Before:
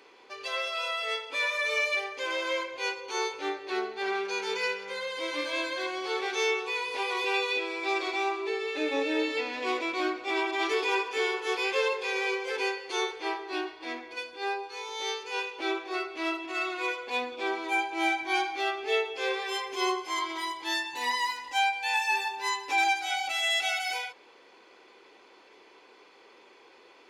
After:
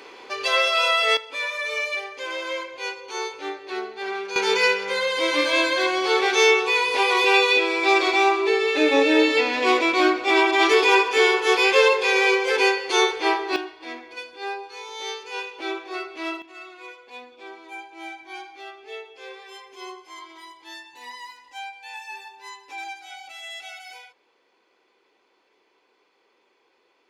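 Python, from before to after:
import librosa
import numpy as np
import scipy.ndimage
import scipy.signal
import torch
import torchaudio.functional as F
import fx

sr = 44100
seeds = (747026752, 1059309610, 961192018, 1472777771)

y = fx.gain(x, sr, db=fx.steps((0.0, 12.0), (1.17, 1.0), (4.36, 11.0), (13.56, 1.0), (16.42, -10.0)))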